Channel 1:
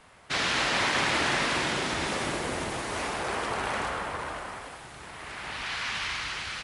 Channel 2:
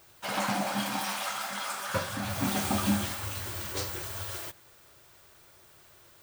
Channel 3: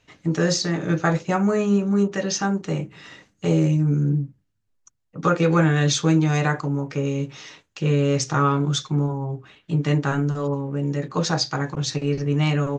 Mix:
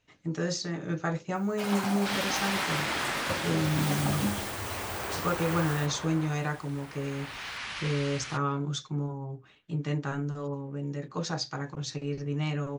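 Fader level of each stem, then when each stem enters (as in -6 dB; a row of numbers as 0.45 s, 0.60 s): -5.5 dB, -3.0 dB, -10.0 dB; 1.75 s, 1.35 s, 0.00 s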